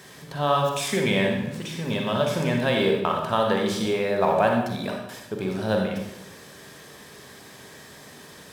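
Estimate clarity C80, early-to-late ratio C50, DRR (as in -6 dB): 5.5 dB, 2.5 dB, 1.0 dB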